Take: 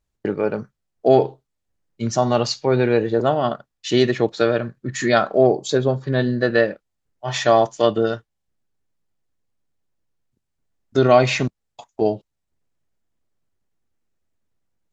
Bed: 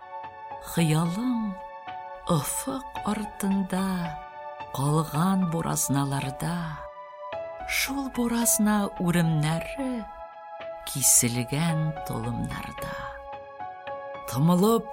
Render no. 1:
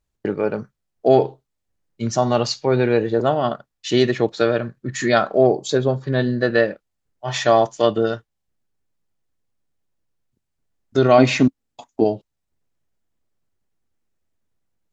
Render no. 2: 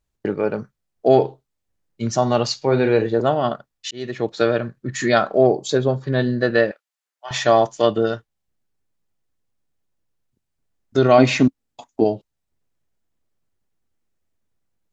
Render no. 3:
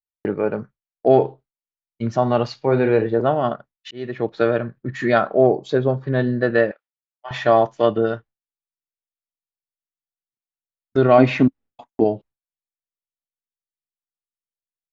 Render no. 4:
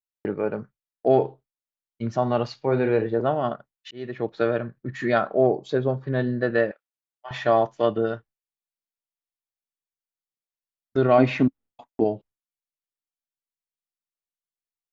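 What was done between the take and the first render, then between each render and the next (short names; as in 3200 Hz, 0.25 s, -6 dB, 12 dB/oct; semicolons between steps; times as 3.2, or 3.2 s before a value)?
11.18–12.04 bell 270 Hz +12.5 dB 0.54 oct
2.57–3.07 doubler 44 ms -9 dB; 3.91–4.42 fade in; 6.71–7.31 HPF 1000 Hz
LPF 2500 Hz 12 dB/oct; expander -37 dBFS
gain -4.5 dB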